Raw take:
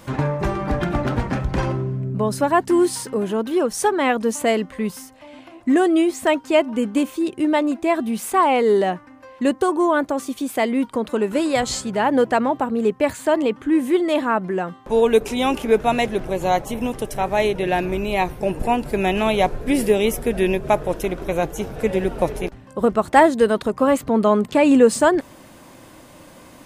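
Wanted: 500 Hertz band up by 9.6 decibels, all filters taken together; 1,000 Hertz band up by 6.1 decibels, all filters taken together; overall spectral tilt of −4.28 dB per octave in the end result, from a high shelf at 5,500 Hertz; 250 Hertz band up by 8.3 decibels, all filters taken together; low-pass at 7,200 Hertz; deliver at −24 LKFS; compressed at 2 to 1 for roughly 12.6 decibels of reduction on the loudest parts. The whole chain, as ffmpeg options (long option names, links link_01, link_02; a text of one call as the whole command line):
ffmpeg -i in.wav -af "lowpass=7200,equalizer=frequency=250:width_type=o:gain=7,equalizer=frequency=500:width_type=o:gain=9,equalizer=frequency=1000:width_type=o:gain=3.5,highshelf=frequency=5500:gain=3.5,acompressor=threshold=-23dB:ratio=2,volume=-3dB" out.wav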